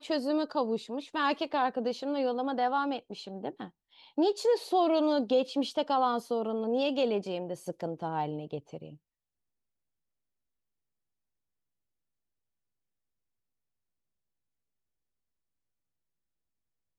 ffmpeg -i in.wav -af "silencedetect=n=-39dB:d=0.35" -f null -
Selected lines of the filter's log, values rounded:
silence_start: 3.66
silence_end: 4.18 | silence_duration: 0.52
silence_start: 8.89
silence_end: 16.99 | silence_duration: 8.10